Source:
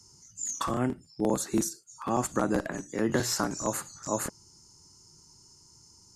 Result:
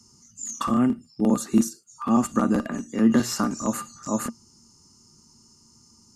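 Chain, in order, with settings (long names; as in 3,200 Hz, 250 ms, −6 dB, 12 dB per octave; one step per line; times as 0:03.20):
hollow resonant body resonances 230/1,200/2,800 Hz, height 16 dB, ringing for 95 ms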